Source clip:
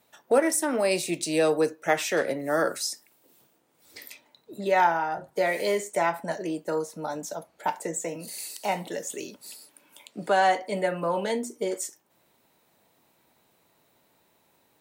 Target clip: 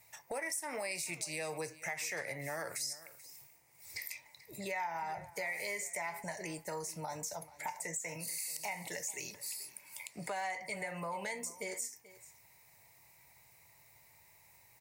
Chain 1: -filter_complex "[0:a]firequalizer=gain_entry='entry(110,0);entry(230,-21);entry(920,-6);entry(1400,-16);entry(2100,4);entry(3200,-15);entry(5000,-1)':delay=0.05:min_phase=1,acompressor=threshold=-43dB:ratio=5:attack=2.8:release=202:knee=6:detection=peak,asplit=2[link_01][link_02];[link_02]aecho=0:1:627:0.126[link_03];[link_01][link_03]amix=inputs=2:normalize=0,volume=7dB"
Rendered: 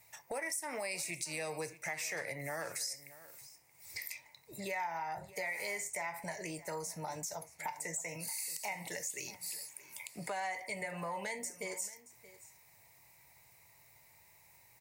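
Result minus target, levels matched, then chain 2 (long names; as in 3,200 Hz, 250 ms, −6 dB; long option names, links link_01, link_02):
echo 192 ms late
-filter_complex "[0:a]firequalizer=gain_entry='entry(110,0);entry(230,-21);entry(920,-6);entry(1400,-16);entry(2100,4);entry(3200,-15);entry(5000,-1)':delay=0.05:min_phase=1,acompressor=threshold=-43dB:ratio=5:attack=2.8:release=202:knee=6:detection=peak,asplit=2[link_01][link_02];[link_02]aecho=0:1:435:0.126[link_03];[link_01][link_03]amix=inputs=2:normalize=0,volume=7dB"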